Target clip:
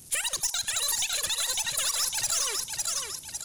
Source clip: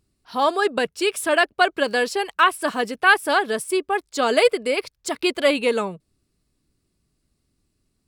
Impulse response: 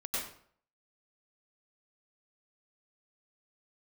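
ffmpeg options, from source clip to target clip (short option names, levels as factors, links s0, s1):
-filter_complex "[0:a]aeval=exprs='val(0)+0.5*0.0266*sgn(val(0))':c=same,acompressor=threshold=0.0316:ratio=3,aresample=11025,aresample=44100,agate=range=0.112:threshold=0.0158:ratio=16:detection=peak,equalizer=f=340:t=o:w=2.1:g=-13,asetrate=103194,aresample=44100,aecho=1:1:553|1106|1659|2212|2765:0.447|0.197|0.0865|0.0381|0.0167,asplit=2[s0][s1];[1:a]atrim=start_sample=2205,asetrate=74970,aresample=44100[s2];[s1][s2]afir=irnorm=-1:irlink=0,volume=0.112[s3];[s0][s3]amix=inputs=2:normalize=0,alimiter=level_in=1.33:limit=0.0631:level=0:latency=1:release=44,volume=0.75,bass=f=250:g=0,treble=f=4000:g=15,aeval=exprs='(tanh(17.8*val(0)+0.15)-tanh(0.15))/17.8':c=same,volume=1.58"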